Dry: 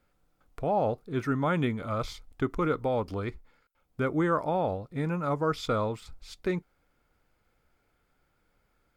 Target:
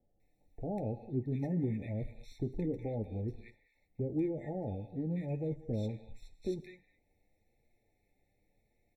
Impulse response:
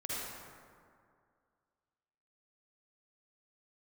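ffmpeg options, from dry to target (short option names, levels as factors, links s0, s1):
-filter_complex "[0:a]asplit=2[s0][s1];[1:a]atrim=start_sample=2205,afade=t=out:st=0.29:d=0.01,atrim=end_sample=13230[s2];[s1][s2]afir=irnorm=-1:irlink=0,volume=0.141[s3];[s0][s3]amix=inputs=2:normalize=0,flanger=delay=8.4:depth=2:regen=-32:speed=0.91:shape=sinusoidal,acrossover=split=370[s4][s5];[s5]acompressor=threshold=0.00178:ratio=2[s6];[s4][s6]amix=inputs=2:normalize=0,acrossover=split=1200[s7][s8];[s8]adelay=200[s9];[s7][s9]amix=inputs=2:normalize=0,afftfilt=real='re*eq(mod(floor(b*sr/1024/880),2),0)':imag='im*eq(mod(floor(b*sr/1024/880),2),0)':win_size=1024:overlap=0.75"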